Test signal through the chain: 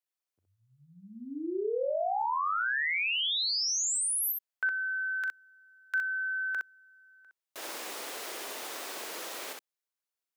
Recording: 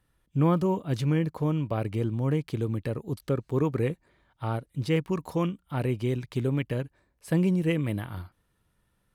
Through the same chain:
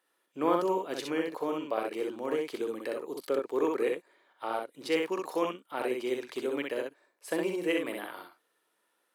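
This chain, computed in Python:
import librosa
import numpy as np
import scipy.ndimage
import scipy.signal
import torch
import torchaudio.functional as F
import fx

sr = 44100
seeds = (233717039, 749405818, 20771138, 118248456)

p1 = scipy.signal.sosfilt(scipy.signal.butter(4, 350.0, 'highpass', fs=sr, output='sos'), x)
y = p1 + fx.room_early_taps(p1, sr, ms=(41, 63), db=(-13.0, -3.0), dry=0)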